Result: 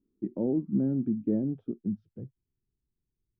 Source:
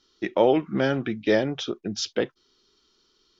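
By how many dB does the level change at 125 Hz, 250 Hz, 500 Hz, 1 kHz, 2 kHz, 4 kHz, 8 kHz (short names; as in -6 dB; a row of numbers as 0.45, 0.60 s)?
-1.5 dB, -1.0 dB, -13.5 dB, under -25 dB, under -35 dB, under -40 dB, n/a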